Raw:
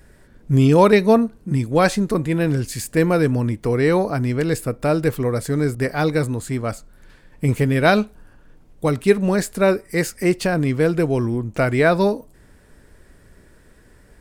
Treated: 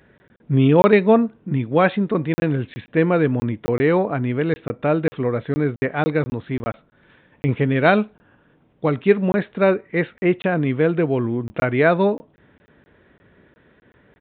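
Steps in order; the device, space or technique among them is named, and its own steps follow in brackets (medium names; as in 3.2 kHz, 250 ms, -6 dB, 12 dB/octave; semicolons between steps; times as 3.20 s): call with lost packets (high-pass 120 Hz 12 dB/octave; resampled via 8 kHz; lost packets of 20 ms random)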